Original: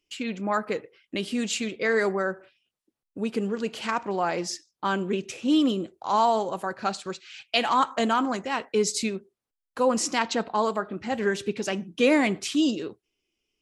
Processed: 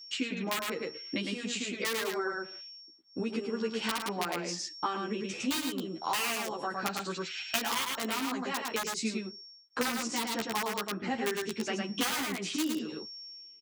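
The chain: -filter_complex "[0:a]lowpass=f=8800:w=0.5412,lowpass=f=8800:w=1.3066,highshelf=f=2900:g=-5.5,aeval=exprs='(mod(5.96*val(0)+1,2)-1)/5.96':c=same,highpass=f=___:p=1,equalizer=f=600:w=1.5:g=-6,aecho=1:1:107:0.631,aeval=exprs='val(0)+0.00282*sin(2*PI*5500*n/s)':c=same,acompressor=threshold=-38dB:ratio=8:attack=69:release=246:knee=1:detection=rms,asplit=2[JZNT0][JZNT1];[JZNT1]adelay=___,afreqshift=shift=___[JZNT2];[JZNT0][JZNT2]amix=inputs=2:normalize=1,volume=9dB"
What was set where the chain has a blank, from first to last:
230, 11.6, -0.75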